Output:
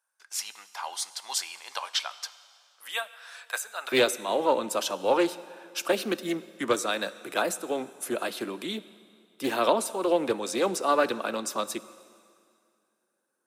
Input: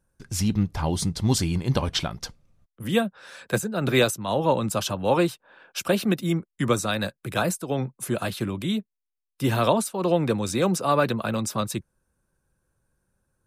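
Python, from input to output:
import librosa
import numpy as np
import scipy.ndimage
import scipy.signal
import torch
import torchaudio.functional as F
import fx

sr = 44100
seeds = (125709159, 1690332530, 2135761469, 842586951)

y = fx.highpass(x, sr, hz=fx.steps((0.0, 820.0), (3.92, 280.0)), slope=24)
y = fx.rev_plate(y, sr, seeds[0], rt60_s=2.2, hf_ratio=0.95, predelay_ms=0, drr_db=15.0)
y = fx.doppler_dist(y, sr, depth_ms=0.15)
y = y * librosa.db_to_amplitude(-1.5)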